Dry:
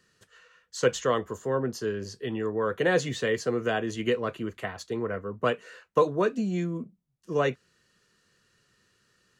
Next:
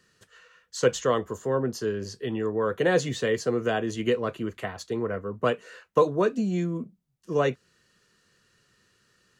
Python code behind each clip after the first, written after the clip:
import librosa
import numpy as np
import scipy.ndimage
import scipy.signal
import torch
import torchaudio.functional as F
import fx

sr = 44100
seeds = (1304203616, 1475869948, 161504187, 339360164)

y = fx.dynamic_eq(x, sr, hz=2000.0, q=0.83, threshold_db=-42.0, ratio=4.0, max_db=-3)
y = y * librosa.db_to_amplitude(2.0)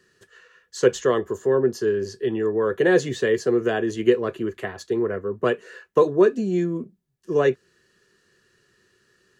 y = fx.small_body(x, sr, hz=(380.0, 1700.0), ring_ms=45, db=12)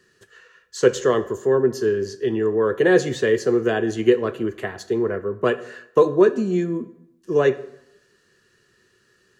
y = fx.rev_plate(x, sr, seeds[0], rt60_s=0.84, hf_ratio=0.75, predelay_ms=0, drr_db=12.5)
y = y * librosa.db_to_amplitude(1.5)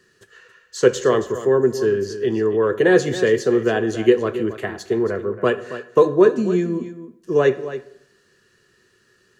y = x + 10.0 ** (-13.0 / 20.0) * np.pad(x, (int(275 * sr / 1000.0), 0))[:len(x)]
y = y * librosa.db_to_amplitude(1.5)